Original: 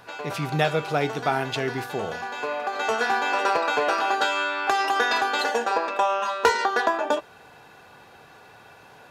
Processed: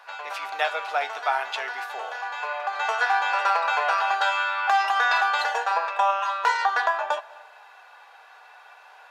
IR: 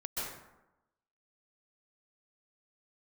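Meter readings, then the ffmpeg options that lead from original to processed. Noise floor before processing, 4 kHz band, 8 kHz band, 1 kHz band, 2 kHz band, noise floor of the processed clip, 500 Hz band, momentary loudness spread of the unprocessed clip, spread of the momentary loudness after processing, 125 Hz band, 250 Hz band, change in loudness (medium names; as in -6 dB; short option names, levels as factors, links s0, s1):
-50 dBFS, -2.0 dB, -5.5 dB, +1.0 dB, +1.5 dB, -50 dBFS, -7.0 dB, 8 LU, 10 LU, under -40 dB, under -25 dB, 0.0 dB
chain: -filter_complex "[0:a]highpass=f=720:w=0.5412,highpass=f=720:w=1.3066,highshelf=f=4600:g=-11,flanger=delay=3.6:depth=3.2:regen=79:speed=0.29:shape=sinusoidal,asplit=2[s0][s1];[1:a]atrim=start_sample=2205,adelay=62[s2];[s1][s2]afir=irnorm=-1:irlink=0,volume=0.0668[s3];[s0][s3]amix=inputs=2:normalize=0,alimiter=level_in=6.31:limit=0.891:release=50:level=0:latency=1,volume=0.355"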